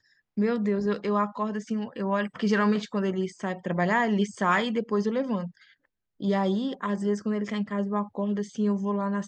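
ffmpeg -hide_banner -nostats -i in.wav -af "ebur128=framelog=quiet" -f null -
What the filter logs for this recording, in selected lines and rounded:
Integrated loudness:
  I:         -27.5 LUFS
  Threshold: -37.7 LUFS
Loudness range:
  LRA:         3.1 LU
  Threshold: -47.6 LUFS
  LRA low:   -29.4 LUFS
  LRA high:  -26.2 LUFS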